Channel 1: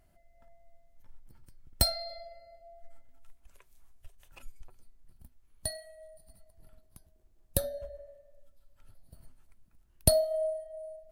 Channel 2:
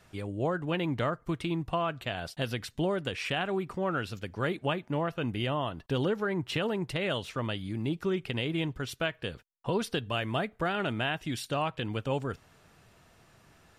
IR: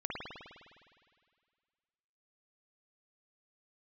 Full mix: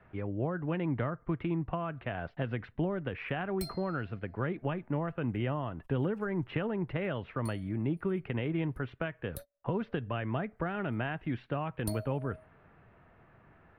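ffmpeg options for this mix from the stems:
-filter_complex "[0:a]adelay=1800,volume=-16dB[link_01];[1:a]lowpass=frequency=2100:width=0.5412,lowpass=frequency=2100:width=1.3066,volume=0.5dB,asplit=2[link_02][link_03];[link_03]apad=whole_len=569446[link_04];[link_01][link_04]sidechaingate=range=-33dB:threshold=-48dB:ratio=16:detection=peak[link_05];[link_05][link_02]amix=inputs=2:normalize=0,acrossover=split=250|3000[link_06][link_07][link_08];[link_07]acompressor=threshold=-33dB:ratio=6[link_09];[link_06][link_09][link_08]amix=inputs=3:normalize=0"

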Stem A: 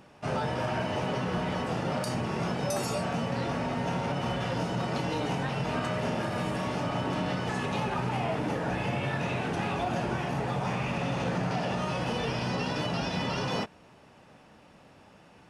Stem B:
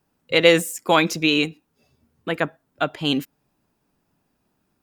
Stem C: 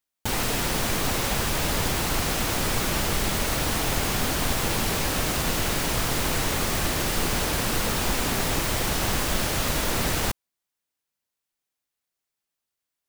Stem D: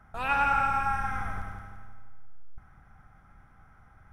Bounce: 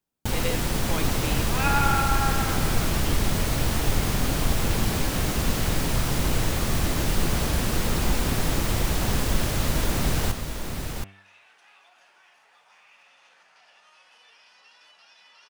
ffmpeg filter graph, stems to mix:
ffmpeg -i stem1.wav -i stem2.wav -i stem3.wav -i stem4.wav -filter_complex "[0:a]highpass=1500,adelay=2050,volume=-17dB[link_01];[1:a]volume=-17.5dB[link_02];[2:a]lowshelf=frequency=280:gain=9,bandreject=frequency=97.5:width_type=h:width=4,bandreject=frequency=195:width_type=h:width=4,bandreject=frequency=292.5:width_type=h:width=4,bandreject=frequency=390:width_type=h:width=4,bandreject=frequency=487.5:width_type=h:width=4,bandreject=frequency=585:width_type=h:width=4,bandreject=frequency=682.5:width_type=h:width=4,bandreject=frequency=780:width_type=h:width=4,bandreject=frequency=877.5:width_type=h:width=4,bandreject=frequency=975:width_type=h:width=4,bandreject=frequency=1072.5:width_type=h:width=4,bandreject=frequency=1170:width_type=h:width=4,bandreject=frequency=1267.5:width_type=h:width=4,bandreject=frequency=1365:width_type=h:width=4,bandreject=frequency=1462.5:width_type=h:width=4,bandreject=frequency=1560:width_type=h:width=4,bandreject=frequency=1657.5:width_type=h:width=4,bandreject=frequency=1755:width_type=h:width=4,bandreject=frequency=1852.5:width_type=h:width=4,bandreject=frequency=1950:width_type=h:width=4,bandreject=frequency=2047.5:width_type=h:width=4,bandreject=frequency=2145:width_type=h:width=4,bandreject=frequency=2242.5:width_type=h:width=4,bandreject=frequency=2340:width_type=h:width=4,bandreject=frequency=2437.5:width_type=h:width=4,bandreject=frequency=2535:width_type=h:width=4,bandreject=frequency=2632.5:width_type=h:width=4,bandreject=frequency=2730:width_type=h:width=4,bandreject=frequency=2827.5:width_type=h:width=4,volume=-4dB,asplit=2[link_03][link_04];[link_04]volume=-7dB[link_05];[3:a]adelay=1350,volume=0.5dB[link_06];[link_05]aecho=0:1:724:1[link_07];[link_01][link_02][link_03][link_06][link_07]amix=inputs=5:normalize=0" out.wav

